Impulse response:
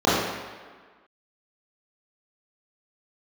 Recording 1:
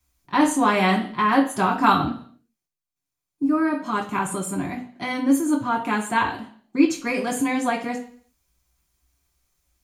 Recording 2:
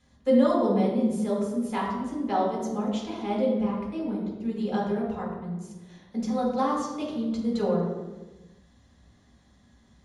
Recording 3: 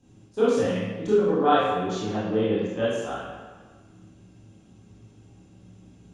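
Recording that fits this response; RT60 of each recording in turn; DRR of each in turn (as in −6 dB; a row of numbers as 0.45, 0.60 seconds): 3; 0.55, 1.2, 1.5 seconds; −1.0, −5.5, −11.0 decibels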